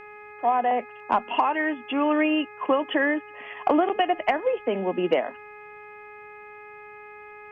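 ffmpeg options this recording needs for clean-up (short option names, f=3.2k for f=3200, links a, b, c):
-af "bandreject=f=418.7:t=h:w=4,bandreject=f=837.4:t=h:w=4,bandreject=f=1.2561k:t=h:w=4,bandreject=f=1.6748k:t=h:w=4,bandreject=f=2.0935k:t=h:w=4,bandreject=f=2.5122k:t=h:w=4"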